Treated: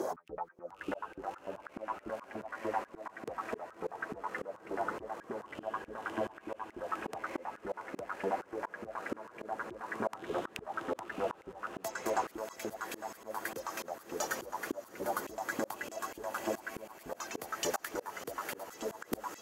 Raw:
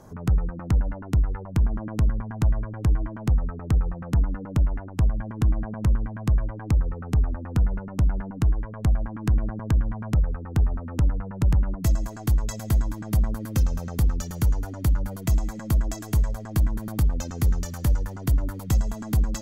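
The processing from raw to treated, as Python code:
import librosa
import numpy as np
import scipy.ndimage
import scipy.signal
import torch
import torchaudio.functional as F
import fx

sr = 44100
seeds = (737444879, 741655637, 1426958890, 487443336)

p1 = fx.filter_lfo_highpass(x, sr, shape='saw_up', hz=3.4, low_hz=320.0, high_hz=3100.0, q=6.2)
p2 = fx.echo_diffused(p1, sr, ms=637, feedback_pct=70, wet_db=-13)
p3 = fx.auto_swell(p2, sr, attack_ms=639.0)
p4 = fx.rider(p3, sr, range_db=4, speed_s=0.5)
p5 = p3 + (p4 * librosa.db_to_amplitude(-2.0))
y = p5 * librosa.db_to_amplitude(4.0)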